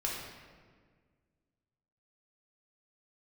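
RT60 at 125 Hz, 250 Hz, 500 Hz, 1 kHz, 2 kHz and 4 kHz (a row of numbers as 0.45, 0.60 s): 2.3, 2.2, 1.8, 1.5, 1.4, 1.1 s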